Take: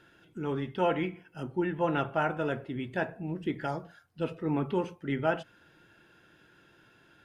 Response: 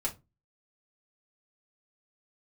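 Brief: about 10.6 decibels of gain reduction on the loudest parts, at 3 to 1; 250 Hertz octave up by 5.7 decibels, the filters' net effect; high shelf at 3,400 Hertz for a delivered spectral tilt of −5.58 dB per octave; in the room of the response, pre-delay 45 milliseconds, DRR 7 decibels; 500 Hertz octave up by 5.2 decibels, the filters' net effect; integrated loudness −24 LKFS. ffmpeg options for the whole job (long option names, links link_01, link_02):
-filter_complex "[0:a]equalizer=frequency=250:width_type=o:gain=6,equalizer=frequency=500:width_type=o:gain=5,highshelf=frequency=3400:gain=-8.5,acompressor=threshold=-34dB:ratio=3,asplit=2[link_01][link_02];[1:a]atrim=start_sample=2205,adelay=45[link_03];[link_02][link_03]afir=irnorm=-1:irlink=0,volume=-10.5dB[link_04];[link_01][link_04]amix=inputs=2:normalize=0,volume=12dB"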